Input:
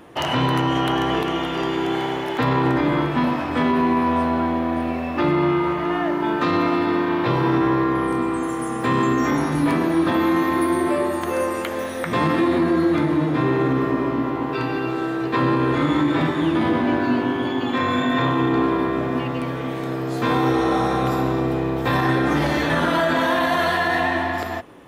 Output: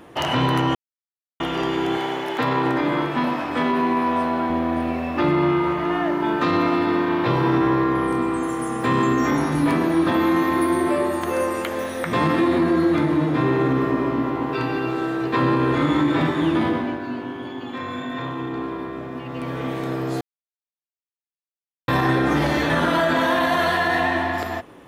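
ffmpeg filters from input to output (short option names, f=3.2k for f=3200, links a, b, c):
-filter_complex "[0:a]asettb=1/sr,asplit=3[a][b][c];[a]atrim=end=1.974[d];[b]atrim=start=1.97:end=4.5,asetpts=PTS-STARTPTS,afade=t=in:d=0.004:c=qsin,afade=t=out:st=2.526:d=0.004:c=qsin,highpass=f=240:p=1[e];[c]atrim=start=4.496[f];[d][e]acrossfade=d=0.004:c1=hsin:c2=qsin[g];[g][f]acrossfade=d=0.004:c1=qsin:c2=hsin,asplit=7[h][i][j][k][l][m][n];[h]atrim=end=0.75,asetpts=PTS-STARTPTS,afade=t=out:st=0.746:d=0.004:c=hsin[o];[i]atrim=start=0.75:end=1.4,asetpts=PTS-STARTPTS,volume=0[p];[j]atrim=start=1.4:end=16.98,asetpts=PTS-STARTPTS,afade=t=in:d=0.004:c=hsin,afade=t=out:st=15.18:d=0.4:silence=0.354813[q];[k]atrim=start=16.98:end=19.23,asetpts=PTS-STARTPTS,volume=-9dB[r];[l]atrim=start=19.23:end=20.21,asetpts=PTS-STARTPTS,afade=t=in:d=0.4:silence=0.354813,afade=t=out:st=0.976:d=0.004:c=hsin[s];[m]atrim=start=20.21:end=21.88,asetpts=PTS-STARTPTS,volume=0[t];[n]atrim=start=21.88,asetpts=PTS-STARTPTS,afade=t=in:d=0.004:c=hsin[u];[o][p][q][r][s][t][u]concat=n=7:v=0:a=1"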